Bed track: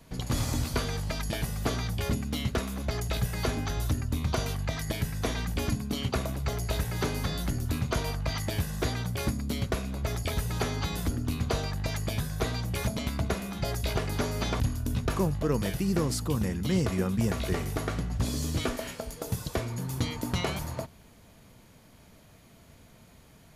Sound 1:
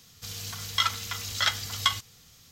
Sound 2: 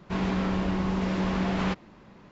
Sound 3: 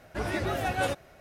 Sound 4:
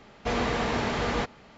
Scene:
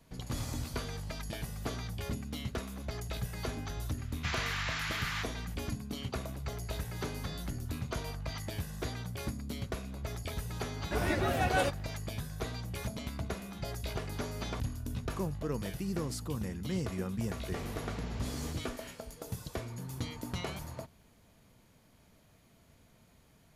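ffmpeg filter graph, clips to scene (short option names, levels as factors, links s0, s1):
-filter_complex "[4:a]asplit=2[s0][s1];[0:a]volume=0.398[s2];[s0]highpass=f=1300:w=0.5412,highpass=f=1300:w=1.3066[s3];[s1]equalizer=f=1200:w=0.34:g=-7[s4];[s3]atrim=end=1.57,asetpts=PTS-STARTPTS,volume=0.794,afade=t=in:d=0.004:c=hsin,afade=t=out:st=1.566:d=0.004:c=hsin,adelay=3980[s5];[3:a]atrim=end=1.2,asetpts=PTS-STARTPTS,volume=0.891,afade=t=in:d=0.004:c=hsin,afade=t=out:st=1.196:d=0.004:c=hsin,adelay=10760[s6];[s4]atrim=end=1.57,asetpts=PTS-STARTPTS,volume=0.224,afade=t=in:d=0.004:c=hsin,afade=t=out:st=1.566:d=0.004:c=hsin,adelay=17280[s7];[s2][s5][s6][s7]amix=inputs=4:normalize=0"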